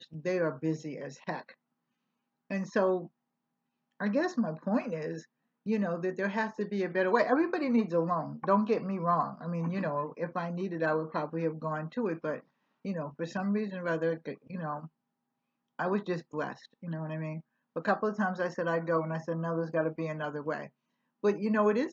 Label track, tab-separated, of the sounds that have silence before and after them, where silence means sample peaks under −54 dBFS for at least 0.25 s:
2.500000	3.080000	sound
4.000000	5.250000	sound
5.660000	12.410000	sound
12.850000	14.880000	sound
15.790000	17.410000	sound
17.760000	20.690000	sound